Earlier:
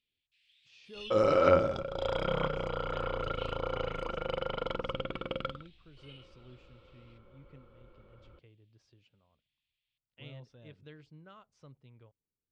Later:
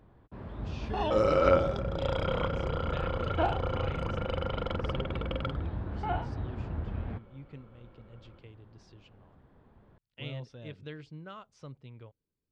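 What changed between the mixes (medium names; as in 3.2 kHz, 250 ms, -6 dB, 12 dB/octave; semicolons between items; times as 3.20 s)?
speech +8.5 dB; first sound: remove steep high-pass 2.5 kHz 48 dB/octave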